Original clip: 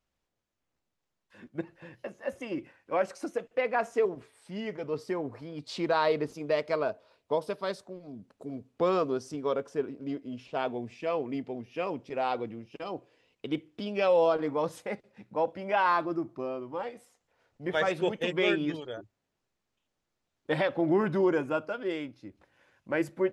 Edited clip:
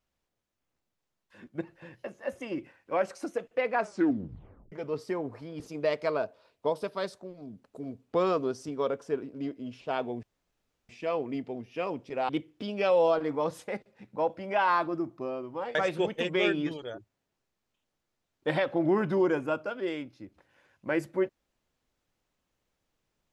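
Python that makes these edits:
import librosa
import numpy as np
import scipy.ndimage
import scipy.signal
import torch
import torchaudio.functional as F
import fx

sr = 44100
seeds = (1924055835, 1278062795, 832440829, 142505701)

y = fx.edit(x, sr, fx.tape_stop(start_s=3.79, length_s=0.93),
    fx.cut(start_s=5.6, length_s=0.66),
    fx.insert_room_tone(at_s=10.89, length_s=0.66),
    fx.cut(start_s=12.29, length_s=1.18),
    fx.cut(start_s=16.93, length_s=0.85), tone=tone)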